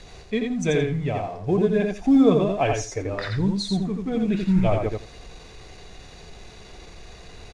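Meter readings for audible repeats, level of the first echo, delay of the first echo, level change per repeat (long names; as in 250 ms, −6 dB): 3, −4.0 dB, 85 ms, −15.5 dB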